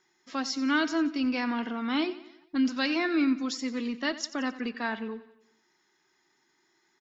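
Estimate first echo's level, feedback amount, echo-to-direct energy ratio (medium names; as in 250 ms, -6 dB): -16.0 dB, 52%, -14.5 dB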